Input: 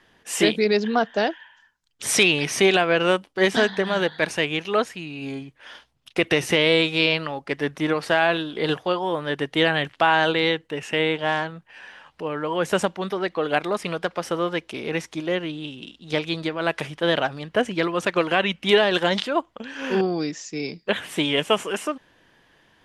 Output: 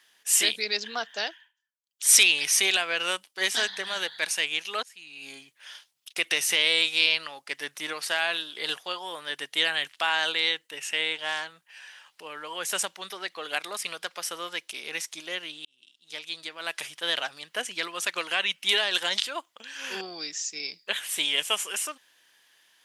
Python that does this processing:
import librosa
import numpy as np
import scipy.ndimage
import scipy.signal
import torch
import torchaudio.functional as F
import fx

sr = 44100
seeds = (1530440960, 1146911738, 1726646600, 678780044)

y = fx.edit(x, sr, fx.fade_down_up(start_s=1.24, length_s=0.92, db=-23.5, fade_s=0.29),
    fx.fade_in_from(start_s=4.83, length_s=0.49, floor_db=-22.5),
    fx.fade_in_span(start_s=15.65, length_s=1.26), tone=tone)
y = np.diff(y, prepend=0.0)
y = F.gain(torch.from_numpy(y), 7.5).numpy()